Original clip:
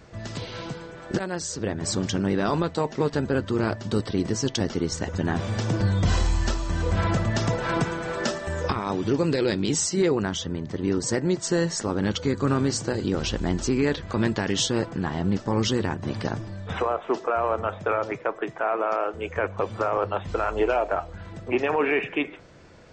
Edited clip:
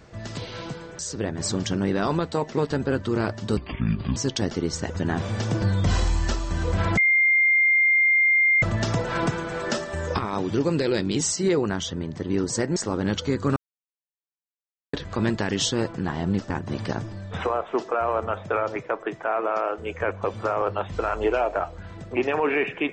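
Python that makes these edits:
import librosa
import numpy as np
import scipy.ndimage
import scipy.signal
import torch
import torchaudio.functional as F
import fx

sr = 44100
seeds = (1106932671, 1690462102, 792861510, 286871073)

y = fx.edit(x, sr, fx.cut(start_s=0.99, length_s=0.43),
    fx.speed_span(start_s=4.0, length_s=0.35, speed=0.59),
    fx.insert_tone(at_s=7.16, length_s=1.65, hz=2110.0, db=-15.5),
    fx.cut(start_s=11.3, length_s=0.44),
    fx.silence(start_s=12.54, length_s=1.37),
    fx.cut(start_s=15.48, length_s=0.38), tone=tone)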